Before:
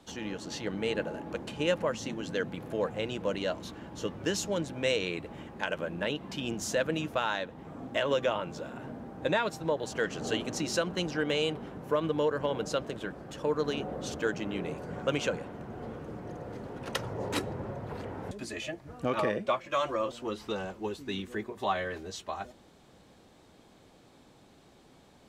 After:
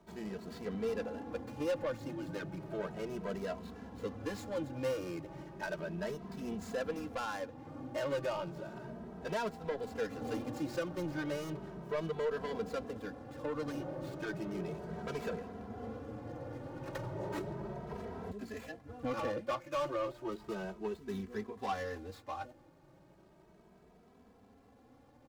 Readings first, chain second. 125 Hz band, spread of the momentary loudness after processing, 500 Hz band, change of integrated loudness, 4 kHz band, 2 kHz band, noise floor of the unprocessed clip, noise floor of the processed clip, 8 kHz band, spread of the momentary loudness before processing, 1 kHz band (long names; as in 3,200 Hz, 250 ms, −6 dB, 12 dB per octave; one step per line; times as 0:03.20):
−5.0 dB, 9 LU, −6.0 dB, −6.5 dB, −14.0 dB, −9.0 dB, −59 dBFS, −63 dBFS, −14.0 dB, 11 LU, −6.5 dB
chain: running median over 15 samples
soft clipping −27.5 dBFS, distortion −12 dB
barber-pole flanger 2.7 ms +0.34 Hz